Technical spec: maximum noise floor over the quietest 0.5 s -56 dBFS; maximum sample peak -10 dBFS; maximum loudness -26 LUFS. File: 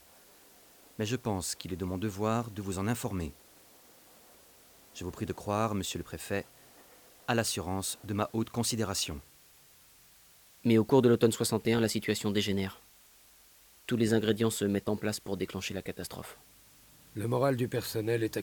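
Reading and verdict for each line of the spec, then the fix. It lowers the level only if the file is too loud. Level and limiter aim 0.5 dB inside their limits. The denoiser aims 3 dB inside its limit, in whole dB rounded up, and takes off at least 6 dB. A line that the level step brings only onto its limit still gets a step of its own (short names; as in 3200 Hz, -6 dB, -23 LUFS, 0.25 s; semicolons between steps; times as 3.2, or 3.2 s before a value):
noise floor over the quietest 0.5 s -60 dBFS: OK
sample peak -11.0 dBFS: OK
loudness -31.5 LUFS: OK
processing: none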